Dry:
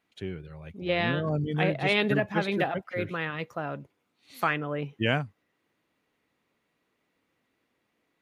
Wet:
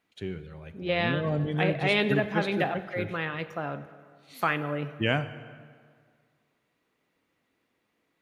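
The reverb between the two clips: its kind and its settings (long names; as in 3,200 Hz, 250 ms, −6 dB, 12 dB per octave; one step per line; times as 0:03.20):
dense smooth reverb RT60 1.9 s, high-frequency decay 0.7×, DRR 11.5 dB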